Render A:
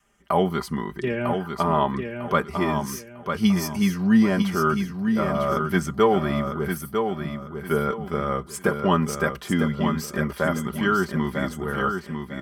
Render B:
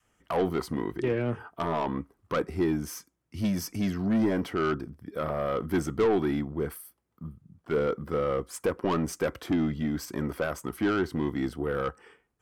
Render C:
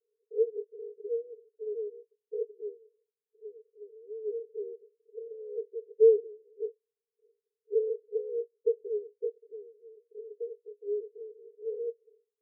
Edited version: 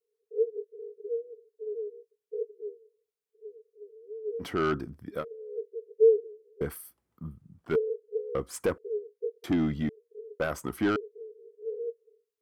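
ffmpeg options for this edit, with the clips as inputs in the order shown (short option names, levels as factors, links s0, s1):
-filter_complex "[1:a]asplit=5[s0][s1][s2][s3][s4];[2:a]asplit=6[s5][s6][s7][s8][s9][s10];[s5]atrim=end=4.45[s11];[s0]atrim=start=4.39:end=5.25[s12];[s6]atrim=start=5.19:end=6.612[s13];[s1]atrim=start=6.608:end=7.762[s14];[s7]atrim=start=7.758:end=8.352[s15];[s2]atrim=start=8.348:end=8.782[s16];[s8]atrim=start=8.778:end=9.442[s17];[s3]atrim=start=9.438:end=9.892[s18];[s9]atrim=start=9.888:end=10.402[s19];[s4]atrim=start=10.398:end=10.962[s20];[s10]atrim=start=10.958[s21];[s11][s12]acrossfade=d=0.06:c1=tri:c2=tri[s22];[s22][s13]acrossfade=d=0.06:c1=tri:c2=tri[s23];[s23][s14]acrossfade=d=0.004:c1=hsin:c2=hsin[s24];[s24][s15]acrossfade=d=0.004:c1=hsin:c2=hsin[s25];[s25][s16]acrossfade=d=0.004:c1=hsin:c2=hsin[s26];[s26][s17]acrossfade=d=0.004:c1=hsin:c2=hsin[s27];[s27][s18]acrossfade=d=0.004:c1=hsin:c2=hsin[s28];[s28][s19]acrossfade=d=0.004:c1=hsin:c2=hsin[s29];[s29][s20]acrossfade=d=0.004:c1=hsin:c2=hsin[s30];[s30][s21]acrossfade=d=0.004:c1=hsin:c2=hsin"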